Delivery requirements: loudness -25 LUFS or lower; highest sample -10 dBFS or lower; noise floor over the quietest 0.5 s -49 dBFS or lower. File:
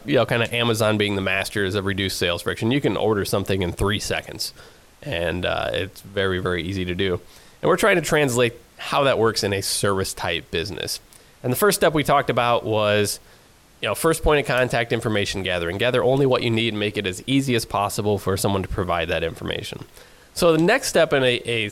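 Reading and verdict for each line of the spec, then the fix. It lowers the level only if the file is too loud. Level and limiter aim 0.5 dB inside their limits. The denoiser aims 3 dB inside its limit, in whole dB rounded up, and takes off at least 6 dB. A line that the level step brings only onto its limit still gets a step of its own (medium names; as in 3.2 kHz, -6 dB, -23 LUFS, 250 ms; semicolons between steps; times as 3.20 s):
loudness -21.5 LUFS: fail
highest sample -6.5 dBFS: fail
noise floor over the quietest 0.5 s -52 dBFS: pass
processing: trim -4 dB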